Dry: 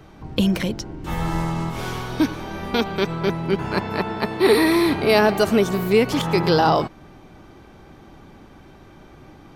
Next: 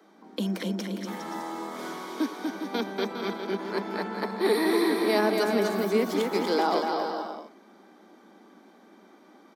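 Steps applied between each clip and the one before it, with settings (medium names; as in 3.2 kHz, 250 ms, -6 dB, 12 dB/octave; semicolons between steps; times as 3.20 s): steep high-pass 190 Hz 96 dB/octave; peaking EQ 2.7 kHz -9.5 dB 0.26 oct; on a send: bouncing-ball echo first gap 240 ms, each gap 0.7×, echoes 5; on the sum: trim -8.5 dB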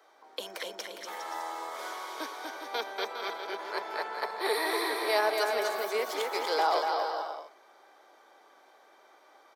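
high-pass 510 Hz 24 dB/octave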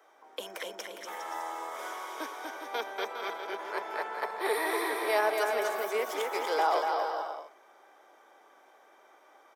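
peaking EQ 4.3 kHz -12 dB 0.32 oct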